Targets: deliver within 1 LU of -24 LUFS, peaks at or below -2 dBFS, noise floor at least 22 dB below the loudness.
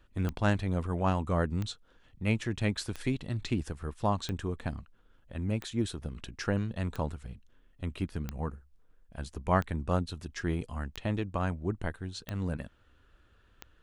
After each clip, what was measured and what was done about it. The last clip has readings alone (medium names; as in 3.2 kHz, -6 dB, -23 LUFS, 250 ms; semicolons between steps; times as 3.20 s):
clicks found 11; loudness -33.5 LUFS; peak level -12.5 dBFS; loudness target -24.0 LUFS
-> de-click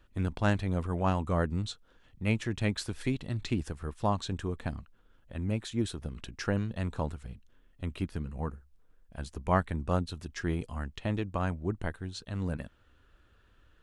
clicks found 0; loudness -33.5 LUFS; peak level -12.5 dBFS; loudness target -24.0 LUFS
-> trim +9.5 dB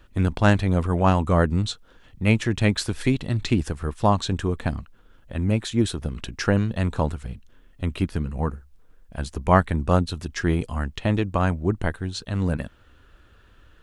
loudness -24.0 LUFS; peak level -3.0 dBFS; noise floor -54 dBFS